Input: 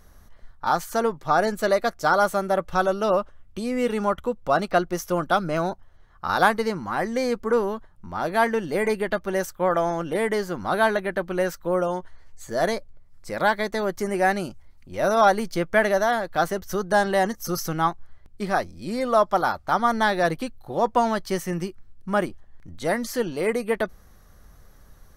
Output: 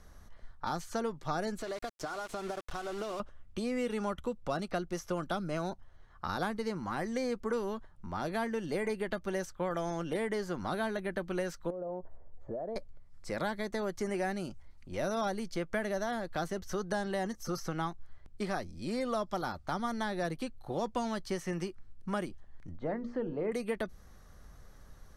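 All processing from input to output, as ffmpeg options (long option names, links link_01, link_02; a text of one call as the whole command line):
ffmpeg -i in.wav -filter_complex "[0:a]asettb=1/sr,asplit=3[link_01][link_02][link_03];[link_01]atrim=end=1.584[link_04];[link_02]atrim=start=1.58:end=3.2,asetpts=PTS-STARTPTS,afade=type=in:duration=0.004:curve=qsin,afade=type=out:start_time=1.616:duration=0.004:curve=qsin,aecho=1:1:2.8:0.46,atrim=end_sample=71442,acompressor=threshold=-29dB:ratio=12:attack=3.2:release=140:knee=1:detection=peak,aeval=exprs='val(0)*gte(abs(val(0)),0.0119)':channel_layout=same[link_05];[link_03]atrim=start=3.196[link_06];[link_04][link_05]acrossfade=duration=0.004:curve1=hsin:curve2=qsin[link_07];[link_07][link_06]acrossfade=duration=0.004:curve1=qsin:curve2=hsin,asettb=1/sr,asplit=3[link_08][link_09][link_10];[link_08]atrim=end=11.704[link_11];[link_09]atrim=start=11.7:end=12.76,asetpts=PTS-STARTPTS,afade=type=in:duration=0.004:curve=qsin,afade=type=out:start_time=1.056:duration=0.004:curve=qsin,lowpass=frequency=610:width_type=q:width=2.1,acompressor=threshold=-32dB:ratio=5:attack=3.2:release=140:knee=1:detection=peak[link_12];[link_10]atrim=start=12.756[link_13];[link_11][link_12]acrossfade=duration=0.004:curve1=hsin:curve2=qsin[link_14];[link_14][link_13]acrossfade=duration=0.004:curve1=qsin:curve2=hsin,asettb=1/sr,asplit=3[link_15][link_16][link_17];[link_15]atrim=end=22.774[link_18];[link_16]atrim=start=22.77:end=23.52,asetpts=PTS-STARTPTS,afade=type=in:duration=0.004:curve=qsin,afade=type=out:start_time=0.746:duration=0.004:curve=qsin,lowpass=1000,bandreject=frequency=60:width_type=h:width=6,bandreject=frequency=120:width_type=h:width=6,bandreject=frequency=180:width_type=h:width=6,bandreject=frequency=240:width_type=h:width=6,bandreject=frequency=300:width_type=h:width=6,bandreject=frequency=360:width_type=h:width=6,bandreject=frequency=420:width_type=h:width=6,bandreject=frequency=480:width_type=h:width=6[link_19];[link_17]atrim=start=23.516[link_20];[link_18][link_19]acrossfade=duration=0.004:curve1=hsin:curve2=qsin[link_21];[link_21][link_20]acrossfade=duration=0.004:curve1=qsin:curve2=hsin,lowpass=9800,acrossover=split=360|2300|6800[link_22][link_23][link_24][link_25];[link_22]acompressor=threshold=-33dB:ratio=4[link_26];[link_23]acompressor=threshold=-34dB:ratio=4[link_27];[link_24]acompressor=threshold=-45dB:ratio=4[link_28];[link_25]acompressor=threshold=-53dB:ratio=4[link_29];[link_26][link_27][link_28][link_29]amix=inputs=4:normalize=0,volume=-3dB" out.wav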